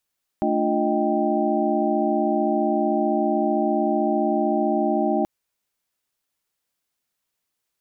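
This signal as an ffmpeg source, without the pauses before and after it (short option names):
-f lavfi -i "aevalsrc='0.0562*(sin(2*PI*220*t)+sin(2*PI*293.66*t)+sin(2*PI*349.23*t)+sin(2*PI*622.25*t)+sin(2*PI*783.99*t))':d=4.83:s=44100"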